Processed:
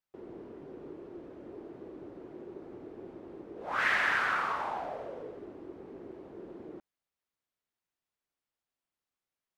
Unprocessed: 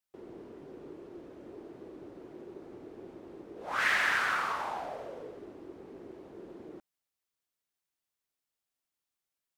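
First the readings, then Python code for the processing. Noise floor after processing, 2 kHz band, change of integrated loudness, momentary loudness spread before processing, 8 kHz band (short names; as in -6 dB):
under -85 dBFS, 0.0 dB, -0.5 dB, 21 LU, -7.0 dB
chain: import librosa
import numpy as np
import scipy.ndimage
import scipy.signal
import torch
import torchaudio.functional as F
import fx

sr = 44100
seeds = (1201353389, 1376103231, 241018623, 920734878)

y = fx.high_shelf(x, sr, hz=4200.0, db=-11.5)
y = F.gain(torch.from_numpy(y), 1.5).numpy()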